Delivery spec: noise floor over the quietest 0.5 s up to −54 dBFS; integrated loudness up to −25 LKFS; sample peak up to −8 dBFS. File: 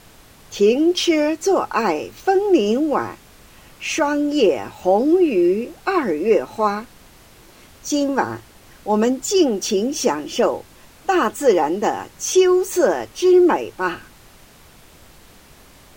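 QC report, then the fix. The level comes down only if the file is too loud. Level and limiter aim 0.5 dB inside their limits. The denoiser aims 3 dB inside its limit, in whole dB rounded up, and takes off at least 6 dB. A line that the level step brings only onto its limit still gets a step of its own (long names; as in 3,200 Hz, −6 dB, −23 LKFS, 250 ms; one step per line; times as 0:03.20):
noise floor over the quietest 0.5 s −47 dBFS: out of spec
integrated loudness −18.5 LKFS: out of spec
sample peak −4.0 dBFS: out of spec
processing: broadband denoise 6 dB, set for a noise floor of −47 dBFS
level −7 dB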